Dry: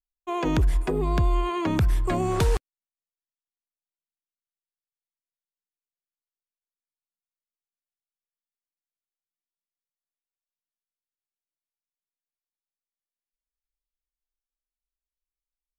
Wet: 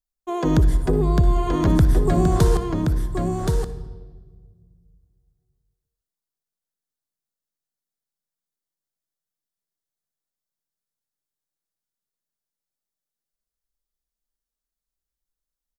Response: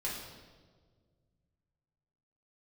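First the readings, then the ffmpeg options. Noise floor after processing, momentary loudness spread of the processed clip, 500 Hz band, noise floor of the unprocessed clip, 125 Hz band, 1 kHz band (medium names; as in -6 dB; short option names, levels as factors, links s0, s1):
under -85 dBFS, 10 LU, +5.5 dB, under -85 dBFS, +7.5 dB, +2.0 dB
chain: -filter_complex "[0:a]equalizer=f=160:t=o:w=0.67:g=5,equalizer=f=1000:t=o:w=0.67:g=-4,equalizer=f=2500:t=o:w=0.67:g=-12,aecho=1:1:1074:0.596,asplit=2[s0][s1];[1:a]atrim=start_sample=2205,adelay=58[s2];[s1][s2]afir=irnorm=-1:irlink=0,volume=0.178[s3];[s0][s3]amix=inputs=2:normalize=0,volume=1.58"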